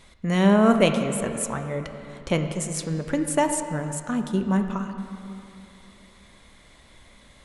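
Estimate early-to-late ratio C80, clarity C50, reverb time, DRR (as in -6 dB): 8.0 dB, 7.5 dB, 2.9 s, 6.0 dB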